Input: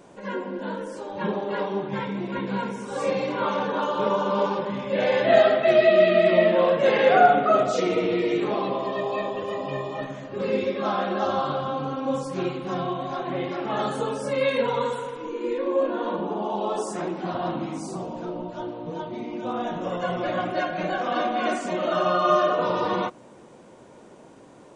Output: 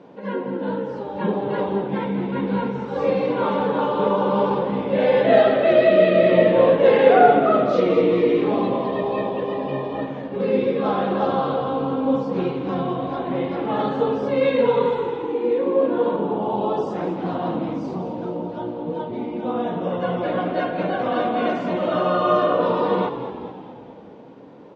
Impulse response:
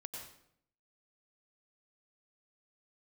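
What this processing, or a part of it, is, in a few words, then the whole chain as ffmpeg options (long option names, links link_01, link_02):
frequency-shifting delay pedal into a guitar cabinet: -filter_complex "[0:a]asplit=8[link_01][link_02][link_03][link_04][link_05][link_06][link_07][link_08];[link_02]adelay=214,afreqshift=-59,volume=-10.5dB[link_09];[link_03]adelay=428,afreqshift=-118,volume=-15.1dB[link_10];[link_04]adelay=642,afreqshift=-177,volume=-19.7dB[link_11];[link_05]adelay=856,afreqshift=-236,volume=-24.2dB[link_12];[link_06]adelay=1070,afreqshift=-295,volume=-28.8dB[link_13];[link_07]adelay=1284,afreqshift=-354,volume=-33.4dB[link_14];[link_08]adelay=1498,afreqshift=-413,volume=-38dB[link_15];[link_01][link_09][link_10][link_11][link_12][link_13][link_14][link_15]amix=inputs=8:normalize=0,highpass=93,equalizer=frequency=130:width_type=q:width=4:gain=4,equalizer=frequency=190:width_type=q:width=4:gain=6,equalizer=frequency=270:width_type=q:width=4:gain=8,equalizer=frequency=470:width_type=q:width=4:gain=9,equalizer=frequency=860:width_type=q:width=4:gain=5,lowpass=frequency=4300:width=0.5412,lowpass=frequency=4300:width=1.3066,volume=-1dB"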